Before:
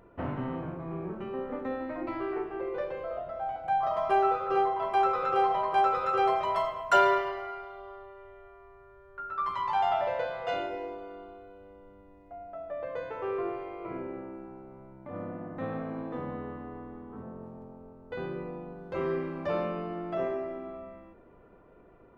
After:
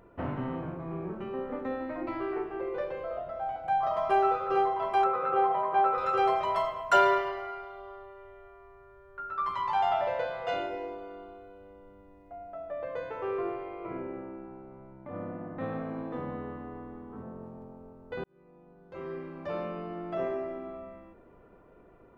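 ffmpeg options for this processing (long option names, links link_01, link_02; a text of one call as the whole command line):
ffmpeg -i in.wav -filter_complex "[0:a]asettb=1/sr,asplit=3[link_01][link_02][link_03];[link_01]atrim=end=5.044[link_04];[link_02]atrim=start=5.04:end=5.98,asetpts=PTS-STARTPTS,afade=type=in:duration=0.004:curve=qsin,afade=type=out:start_time=0.936:duration=0.004:curve=qsin,highpass=120,lowpass=2000[link_05];[link_03]atrim=start=5.976[link_06];[link_04][link_05]acrossfade=duration=0.004:curve1=hsin:curve2=qsin[link_07];[link_07][link_06]acrossfade=duration=0.004:curve1=qsin:curve2=hsin,asettb=1/sr,asplit=3[link_08][link_09][link_10];[link_08]atrim=end=13.544[link_11];[link_09]atrim=start=13.54:end=15.61,asetpts=PTS-STARTPTS,afade=type=in:duration=0.004:curve=qsin,afade=type=out:start_time=2.066:duration=0.004:curve=qsin,lowpass=4200[link_12];[link_10]atrim=start=15.606[link_13];[link_11][link_12]acrossfade=duration=0.004:curve1=hsin:curve2=qsin[link_14];[link_14][link_13]acrossfade=duration=0.004:curve1=qsin:curve2=hsin,asplit=2[link_15][link_16];[link_15]atrim=end=18.24,asetpts=PTS-STARTPTS,afade=type=out:start_time=18.236:duration=0.004:curve=hsin[link_17];[link_16]atrim=start=18.24,asetpts=PTS-STARTPTS,afade=type=in:duration=2.18[link_18];[link_17][link_18]concat=n=2:v=0:a=1" out.wav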